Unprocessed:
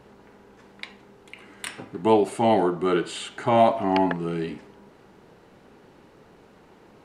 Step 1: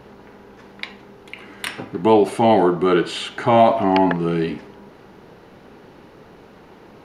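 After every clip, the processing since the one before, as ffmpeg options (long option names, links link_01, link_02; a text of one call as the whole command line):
ffmpeg -i in.wav -filter_complex "[0:a]equalizer=frequency=8000:width=3.3:gain=-11.5,asplit=2[link_01][link_02];[link_02]alimiter=limit=-16.5dB:level=0:latency=1:release=32,volume=0dB[link_03];[link_01][link_03]amix=inputs=2:normalize=0,volume=1.5dB" out.wav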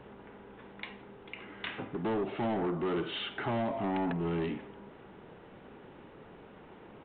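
ffmpeg -i in.wav -filter_complex "[0:a]acrossover=split=310[link_01][link_02];[link_02]acompressor=threshold=-21dB:ratio=10[link_03];[link_01][link_03]amix=inputs=2:normalize=0,aresample=8000,asoftclip=type=tanh:threshold=-21dB,aresample=44100,volume=-7dB" out.wav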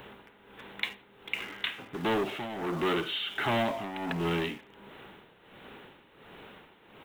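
ffmpeg -i in.wav -filter_complex "[0:a]crystalizer=i=9.5:c=0,asplit=2[link_01][link_02];[link_02]acrusher=bits=5:mix=0:aa=0.000001,volume=-12dB[link_03];[link_01][link_03]amix=inputs=2:normalize=0,tremolo=f=1.4:d=0.73" out.wav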